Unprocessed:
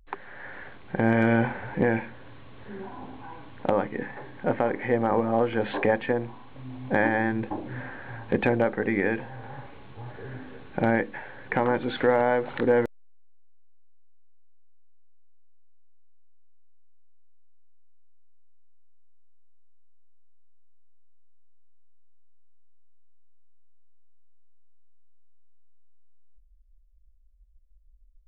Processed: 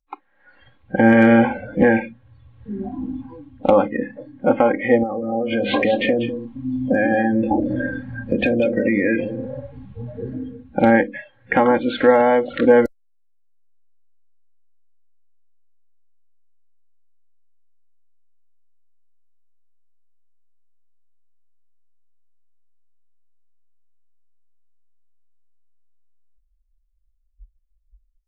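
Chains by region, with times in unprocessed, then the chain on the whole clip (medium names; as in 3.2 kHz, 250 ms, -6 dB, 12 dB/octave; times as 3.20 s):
5.03–10.61 s: compression, threshold -29 dBFS + delay 194 ms -8.5 dB
whole clip: spectral noise reduction 25 dB; comb 3.7 ms, depth 63%; level rider gain up to 15 dB; trim -1 dB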